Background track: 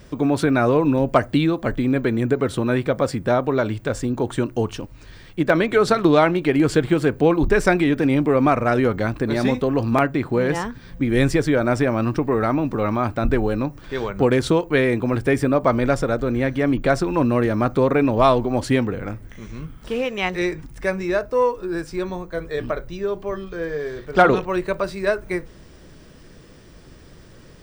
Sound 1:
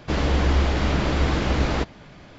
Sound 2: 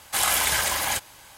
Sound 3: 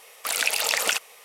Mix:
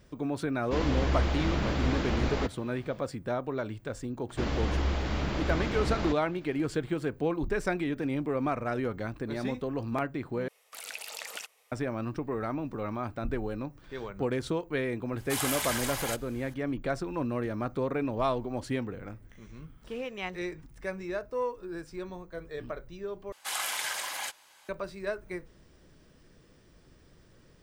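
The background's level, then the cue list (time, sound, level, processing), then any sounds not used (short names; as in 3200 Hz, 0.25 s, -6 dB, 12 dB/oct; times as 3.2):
background track -13 dB
0.63 add 1 -7.5 dB
4.29 add 1 -9 dB
10.48 replace with 3 -17 dB
15.17 add 2 -9.5 dB
23.32 replace with 2 -10 dB + weighting filter A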